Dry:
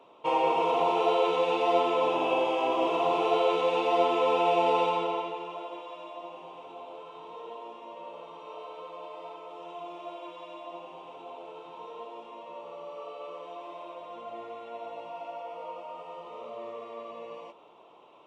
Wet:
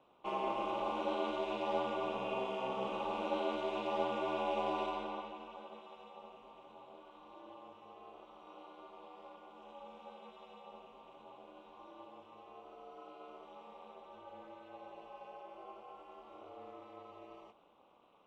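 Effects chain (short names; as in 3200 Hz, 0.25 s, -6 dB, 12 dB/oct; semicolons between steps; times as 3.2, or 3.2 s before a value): ring modulator 130 Hz; gain -8.5 dB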